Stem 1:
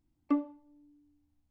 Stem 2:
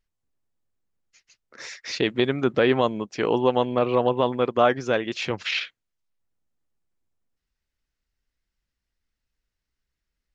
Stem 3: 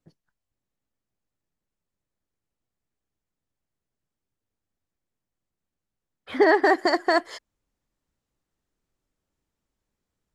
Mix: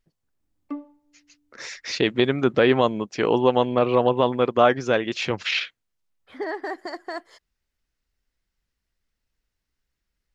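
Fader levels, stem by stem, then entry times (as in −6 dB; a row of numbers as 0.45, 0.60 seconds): −4.0, +2.0, −12.0 decibels; 0.40, 0.00, 0.00 seconds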